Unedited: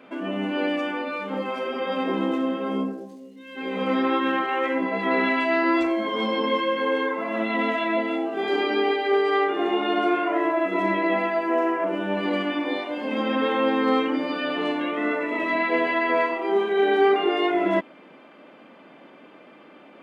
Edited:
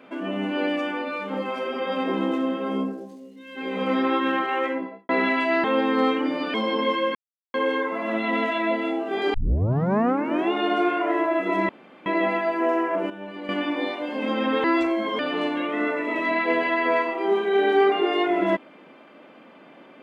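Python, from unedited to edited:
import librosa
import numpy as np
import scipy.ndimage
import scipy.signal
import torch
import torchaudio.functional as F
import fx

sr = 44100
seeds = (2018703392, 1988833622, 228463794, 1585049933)

y = fx.studio_fade_out(x, sr, start_s=4.58, length_s=0.51)
y = fx.edit(y, sr, fx.swap(start_s=5.64, length_s=0.55, other_s=13.53, other_length_s=0.9),
    fx.insert_silence(at_s=6.8, length_s=0.39),
    fx.tape_start(start_s=8.6, length_s=1.18),
    fx.insert_room_tone(at_s=10.95, length_s=0.37),
    fx.clip_gain(start_s=11.99, length_s=0.39, db=-11.0), tone=tone)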